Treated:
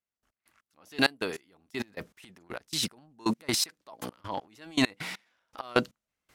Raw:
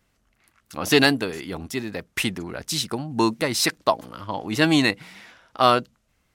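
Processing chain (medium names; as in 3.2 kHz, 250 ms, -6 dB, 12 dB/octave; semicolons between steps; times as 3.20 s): bass shelf 170 Hz -11.5 dB; transient shaper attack -4 dB, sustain +1 dB, from 1.67 s sustain +11 dB; trance gate "...x..xx.." 198 bpm -24 dB; trim -3 dB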